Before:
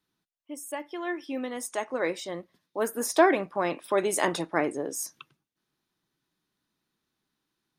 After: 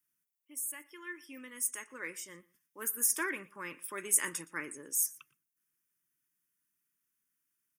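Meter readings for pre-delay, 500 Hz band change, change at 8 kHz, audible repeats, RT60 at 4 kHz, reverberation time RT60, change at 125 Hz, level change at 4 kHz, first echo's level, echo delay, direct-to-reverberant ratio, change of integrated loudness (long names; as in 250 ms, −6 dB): no reverb audible, −20.5 dB, +3.5 dB, 1, no reverb audible, no reverb audible, −15.0 dB, −10.0 dB, −22.5 dB, 118 ms, no reverb audible, −5.0 dB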